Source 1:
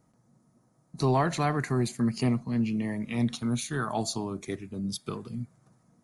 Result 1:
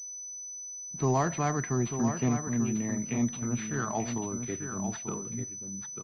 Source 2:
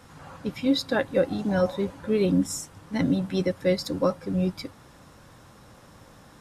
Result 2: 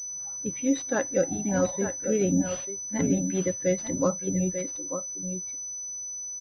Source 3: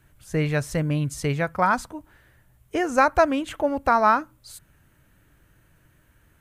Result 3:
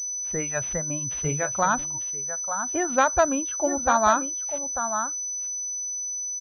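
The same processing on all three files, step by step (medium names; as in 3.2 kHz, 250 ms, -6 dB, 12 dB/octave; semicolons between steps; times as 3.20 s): delay 892 ms -8 dB; spectral noise reduction 15 dB; class-D stage that switches slowly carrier 6 kHz; trim -2 dB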